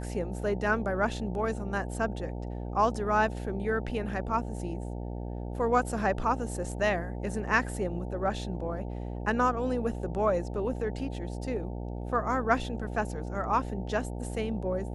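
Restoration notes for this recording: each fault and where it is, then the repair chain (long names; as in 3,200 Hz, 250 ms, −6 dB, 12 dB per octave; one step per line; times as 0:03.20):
mains buzz 60 Hz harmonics 15 −36 dBFS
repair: hum removal 60 Hz, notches 15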